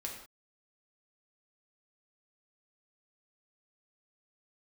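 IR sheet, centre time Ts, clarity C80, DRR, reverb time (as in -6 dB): 33 ms, 7.5 dB, -1.0 dB, not exponential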